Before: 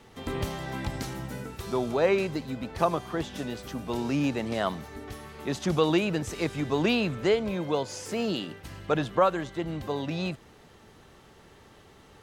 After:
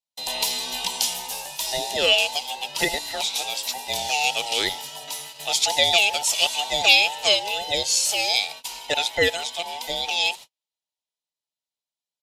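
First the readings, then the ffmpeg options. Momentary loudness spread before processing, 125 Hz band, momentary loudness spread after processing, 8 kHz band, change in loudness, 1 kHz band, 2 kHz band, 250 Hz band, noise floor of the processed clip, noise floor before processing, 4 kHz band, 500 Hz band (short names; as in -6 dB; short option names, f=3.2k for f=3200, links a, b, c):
12 LU, -13.0 dB, 12 LU, +19.5 dB, +8.0 dB, +5.0 dB, +12.0 dB, -12.5 dB, under -85 dBFS, -54 dBFS, +18.5 dB, -1.0 dB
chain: -filter_complex "[0:a]afftfilt=real='real(if(between(b,1,1008),(2*floor((b-1)/48)+1)*48-b,b),0)':imag='imag(if(between(b,1,1008),(2*floor((b-1)/48)+1)*48-b,b),0)*if(between(b,1,1008),-1,1)':win_size=2048:overlap=0.75,adynamicequalizer=threshold=0.00562:dfrequency=2800:dqfactor=1:tfrequency=2800:tqfactor=1:attack=5:release=100:ratio=0.375:range=2:mode=boostabove:tftype=bell,agate=range=-47dB:threshold=-43dB:ratio=16:detection=peak,acrossover=split=750|2000[a][b][c];[b]dynaudnorm=f=160:g=17:m=4dB[d];[a][d][c]amix=inputs=3:normalize=0,aexciter=amount=12.8:drive=2.5:freq=2.6k,aresample=32000,aresample=44100,equalizer=f=470:w=7.6:g=5,volume=-4dB"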